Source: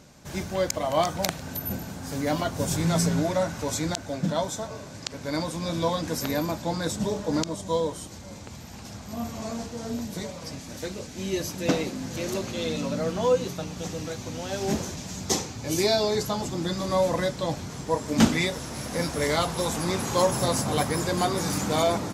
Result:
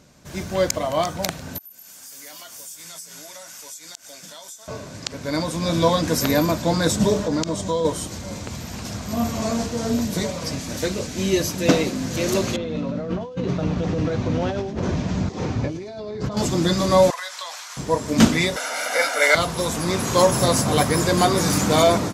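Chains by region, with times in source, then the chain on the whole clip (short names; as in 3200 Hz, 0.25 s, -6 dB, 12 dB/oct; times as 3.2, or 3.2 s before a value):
1.58–4.68 differentiator + notch 4000 Hz, Q 11 + compressor, threshold -45 dBFS
7.24–7.85 bell 11000 Hz -11 dB 0.36 oct + compressor 3:1, threshold -29 dBFS
12.56–16.37 negative-ratio compressor -34 dBFS + tape spacing loss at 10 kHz 33 dB + thin delay 0.105 s, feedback 48%, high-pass 4700 Hz, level -4.5 dB
17.1–17.77 HPF 950 Hz 24 dB/oct + compressor 5:1, threshold -36 dBFS
18.56–19.35 steep high-pass 320 Hz + bell 1700 Hz +9.5 dB 1.6 oct + comb 1.4 ms, depth 99%
whole clip: notch 830 Hz, Q 12; AGC gain up to 10.5 dB; gain -1 dB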